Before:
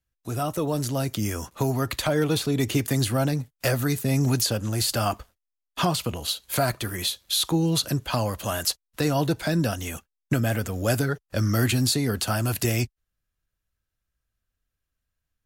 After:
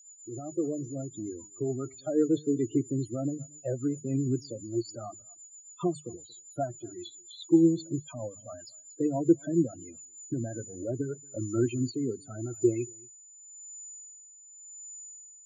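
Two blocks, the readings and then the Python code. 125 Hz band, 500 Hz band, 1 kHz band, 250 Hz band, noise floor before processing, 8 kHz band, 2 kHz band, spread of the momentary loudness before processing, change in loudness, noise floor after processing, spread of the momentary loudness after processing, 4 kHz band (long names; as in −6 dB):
−11.0 dB, −3.5 dB, −14.0 dB, −1.5 dB, −83 dBFS, −10.0 dB, below −20 dB, 6 LU, −5.5 dB, −54 dBFS, 19 LU, −22.0 dB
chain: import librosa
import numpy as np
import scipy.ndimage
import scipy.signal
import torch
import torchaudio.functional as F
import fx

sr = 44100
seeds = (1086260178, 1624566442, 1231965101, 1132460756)

p1 = fx.hum_notches(x, sr, base_hz=50, count=4)
p2 = p1 + 10.0 ** (-36.0 / 20.0) * np.sin(2.0 * np.pi * 7000.0 * np.arange(len(p1)) / sr)
p3 = fx.spec_topn(p2, sr, count=16)
p4 = p3 + fx.echo_single(p3, sr, ms=230, db=-19.0, dry=0)
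p5 = fx.rotary_switch(p4, sr, hz=7.5, then_hz=0.9, switch_at_s=9.7)
p6 = fx.cabinet(p5, sr, low_hz=140.0, low_slope=12, high_hz=9100.0, hz=(210.0, 350.0, 930.0, 1800.0, 4100.0, 8700.0), db=(-5, 9, -4, -6, -5, 9))
y = fx.spectral_expand(p6, sr, expansion=1.5)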